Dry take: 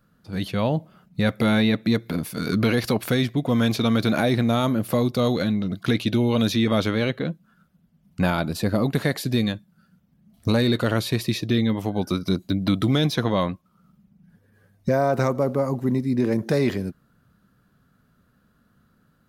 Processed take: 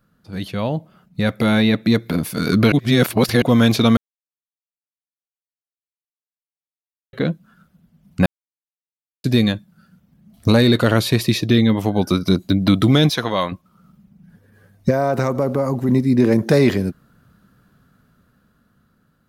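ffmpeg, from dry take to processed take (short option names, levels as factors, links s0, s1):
-filter_complex "[0:a]asettb=1/sr,asplit=3[s0][s1][s2];[s0]atrim=end=13.094[s3];[s1]atrim=start=13.09:end=13.52,asetpts=PTS-STARTPTS,afade=t=in:d=0.004:c=qsin,afade=t=out:st=0.426:d=0.004:c=qsin,lowshelf=f=440:g=-11.5[s4];[s2]atrim=start=13.516[s5];[s3][s4]acrossfade=d=0.004:c1=hsin:c2=qsin[s6];[s6][s5]acrossfade=d=0.004:c1=qsin:c2=hsin,asettb=1/sr,asplit=3[s7][s8][s9];[s7]atrim=end=14.904[s10];[s8]atrim=start=14.9:end=15.89,asetpts=PTS-STARTPTS,afade=t=in:d=0.004:c=qsin,afade=t=out:st=0.986:d=0.004:c=qsin,acompressor=threshold=0.0631:ratio=2:attack=3.2:release=140:knee=1:detection=peak[s11];[s9]atrim=start=15.886[s12];[s10][s11]acrossfade=d=0.004:c1=hsin:c2=qsin[s13];[s13][s12]acrossfade=d=0.004:c1=qsin:c2=hsin,asplit=7[s14][s15][s16][s17][s18][s19][s20];[s14]atrim=end=2.722[s21];[s15]atrim=start=2.718:end=3.422,asetpts=PTS-STARTPTS,areverse[s22];[s16]atrim=start=3.418:end=3.97,asetpts=PTS-STARTPTS,afade=t=out:st=0.548:d=0.004:c=hsin[s23];[s17]atrim=start=3.97:end=7.13,asetpts=PTS-STARTPTS,volume=0[s24];[s18]atrim=start=7.13:end=8.26,asetpts=PTS-STARTPTS,afade=t=in:d=0.004:c=hsin,afade=t=out:st=1.126:d=0.004:c=hsin[s25];[s19]atrim=start=8.26:end=9.24,asetpts=PTS-STARTPTS,volume=0[s26];[s20]atrim=start=9.24,asetpts=PTS-STARTPTS,afade=t=in:d=0.004:c=hsin[s27];[s21][s22]acrossfade=d=0.004:c1=hsin:c2=hsin[s28];[s23][s24][s25][s26][s27]concat=n=5:v=0:a=1[s29];[s28][s29]acrossfade=d=0.004:c1=hsin:c2=hsin,dynaudnorm=f=360:g=9:m=2.99"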